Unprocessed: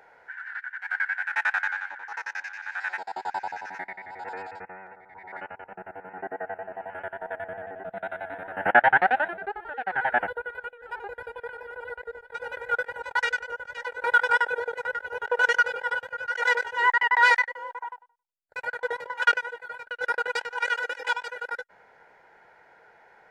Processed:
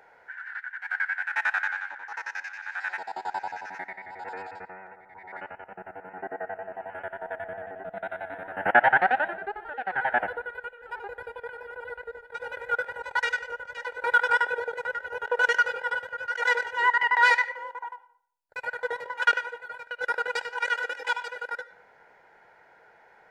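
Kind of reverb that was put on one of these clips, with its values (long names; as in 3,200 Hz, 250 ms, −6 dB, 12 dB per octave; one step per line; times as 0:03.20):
comb and all-pass reverb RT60 0.58 s, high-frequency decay 0.7×, pre-delay 35 ms, DRR 15 dB
level −1 dB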